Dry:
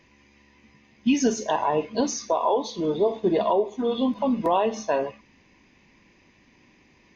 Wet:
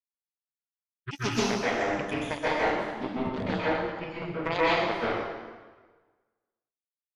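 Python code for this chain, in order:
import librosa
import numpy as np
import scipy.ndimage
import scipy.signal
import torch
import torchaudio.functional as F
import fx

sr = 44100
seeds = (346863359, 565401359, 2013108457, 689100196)

y = fx.pitch_ramps(x, sr, semitones=-12.0, every_ms=1110)
y = scipy.signal.sosfilt(scipy.signal.butter(2, 6000.0, 'lowpass', fs=sr, output='sos'), y)
y = fx.low_shelf(y, sr, hz=190.0, db=-2.5)
y = fx.notch(y, sr, hz=840.0, q=17.0)
y = fx.echo_feedback(y, sr, ms=238, feedback_pct=56, wet_db=-15.5)
y = fx.power_curve(y, sr, exponent=3.0)
y = fx.high_shelf(y, sr, hz=2100.0, db=11.0)
y = fx.rev_plate(y, sr, seeds[0], rt60_s=1.4, hf_ratio=0.8, predelay_ms=115, drr_db=-9.0)
y = fx.doppler_dist(y, sr, depth_ms=0.15)
y = y * librosa.db_to_amplitude(-1.5)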